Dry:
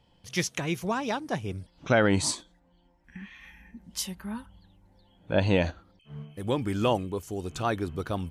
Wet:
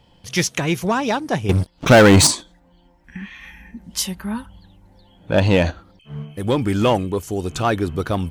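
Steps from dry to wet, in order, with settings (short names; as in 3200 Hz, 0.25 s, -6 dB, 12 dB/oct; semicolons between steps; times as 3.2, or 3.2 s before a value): 1.49–2.27 sample leveller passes 3; in parallel at -10.5 dB: wavefolder -24.5 dBFS; on the sum: gain +7.5 dB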